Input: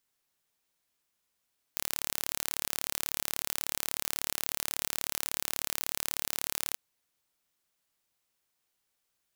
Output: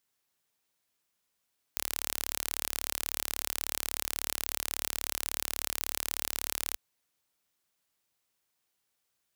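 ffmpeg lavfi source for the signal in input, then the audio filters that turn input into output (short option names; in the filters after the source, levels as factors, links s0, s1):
-f lavfi -i "aevalsrc='0.596*eq(mod(n,1212),0)':d=4.98:s=44100"
-af "highpass=41"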